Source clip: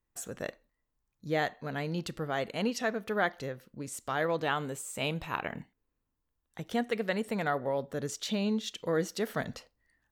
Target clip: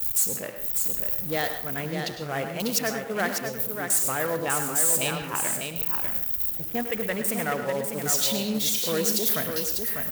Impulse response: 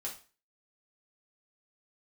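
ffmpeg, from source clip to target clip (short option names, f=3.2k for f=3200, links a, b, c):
-filter_complex "[0:a]aeval=exprs='val(0)+0.5*0.0211*sgn(val(0))':c=same,highpass=f=65:p=1,aemphasis=mode=production:type=75fm,afwtdn=0.0178,agate=range=-33dB:threshold=-31dB:ratio=3:detection=peak,aecho=1:1:597:0.501,acrusher=bits=4:mode=log:mix=0:aa=0.000001,asplit=2[a][b];[1:a]atrim=start_sample=2205,adelay=102[c];[b][c]afir=irnorm=-1:irlink=0,volume=-8dB[d];[a][d]amix=inputs=2:normalize=0"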